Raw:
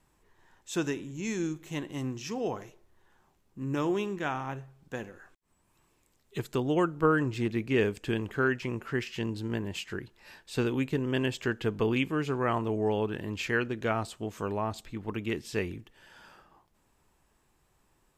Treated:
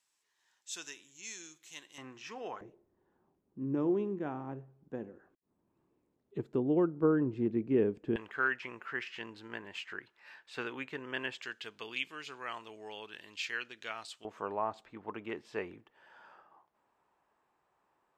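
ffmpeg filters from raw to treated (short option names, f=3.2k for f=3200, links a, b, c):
-af "asetnsamples=n=441:p=0,asendcmd='1.98 bandpass f 1600;2.61 bandpass f 300;8.16 bandpass f 1600;11.42 bandpass f 4000;14.25 bandpass f 900',bandpass=f=5.6k:t=q:w=1:csg=0"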